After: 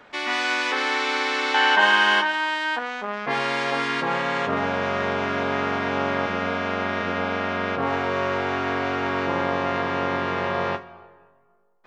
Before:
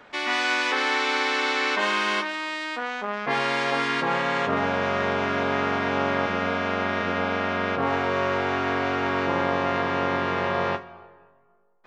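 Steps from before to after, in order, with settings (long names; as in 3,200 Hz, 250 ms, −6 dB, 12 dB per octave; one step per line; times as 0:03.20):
0:01.54–0:02.79: hollow resonant body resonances 870/1,600/3,000 Hz, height 15 dB, ringing for 25 ms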